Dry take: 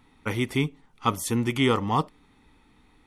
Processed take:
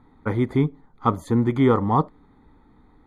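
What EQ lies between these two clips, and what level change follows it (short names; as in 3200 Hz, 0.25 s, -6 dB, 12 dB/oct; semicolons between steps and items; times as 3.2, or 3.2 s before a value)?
running mean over 16 samples; +5.5 dB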